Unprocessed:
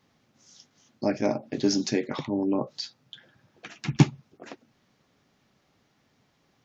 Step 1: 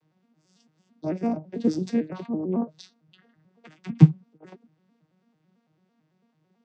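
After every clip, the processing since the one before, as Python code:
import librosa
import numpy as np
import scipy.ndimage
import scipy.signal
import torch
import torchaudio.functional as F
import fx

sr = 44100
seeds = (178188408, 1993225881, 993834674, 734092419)

y = fx.vocoder_arp(x, sr, chord='minor triad', root=51, every_ms=111)
y = y * 10.0 ** (3.5 / 20.0)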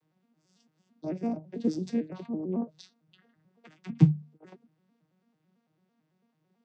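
y = fx.hum_notches(x, sr, base_hz=50, count=3)
y = fx.dynamic_eq(y, sr, hz=1300.0, q=0.87, threshold_db=-44.0, ratio=4.0, max_db=-5)
y = y * 10.0 ** (-4.5 / 20.0)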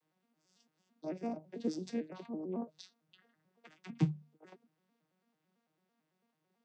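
y = fx.highpass(x, sr, hz=450.0, slope=6)
y = y * 10.0 ** (-2.0 / 20.0)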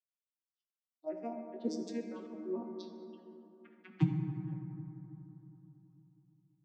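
y = fx.bin_expand(x, sr, power=2.0)
y = fx.env_lowpass(y, sr, base_hz=2700.0, full_db=-38.5)
y = fx.rev_fdn(y, sr, rt60_s=3.3, lf_ratio=1.2, hf_ratio=0.35, size_ms=47.0, drr_db=2.0)
y = y * 10.0 ** (2.0 / 20.0)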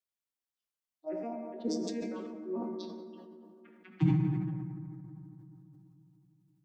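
y = fx.sustainer(x, sr, db_per_s=25.0)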